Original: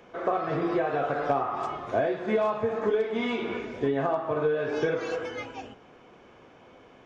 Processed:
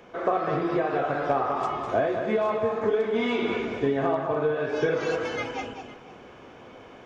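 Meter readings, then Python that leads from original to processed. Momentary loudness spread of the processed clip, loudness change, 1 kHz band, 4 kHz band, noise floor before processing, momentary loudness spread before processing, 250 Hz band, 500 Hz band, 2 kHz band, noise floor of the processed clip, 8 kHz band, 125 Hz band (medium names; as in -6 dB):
7 LU, +2.0 dB, +2.0 dB, +3.5 dB, -54 dBFS, 7 LU, +2.0 dB, +2.0 dB, +2.5 dB, -48 dBFS, no reading, +2.0 dB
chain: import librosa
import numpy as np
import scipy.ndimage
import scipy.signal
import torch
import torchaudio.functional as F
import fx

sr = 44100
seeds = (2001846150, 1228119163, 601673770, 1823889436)

p1 = fx.rider(x, sr, range_db=4, speed_s=0.5)
p2 = p1 + fx.echo_multitap(p1, sr, ms=(204, 510), db=(-7.0, -19.5), dry=0)
y = p2 * 10.0 ** (1.5 / 20.0)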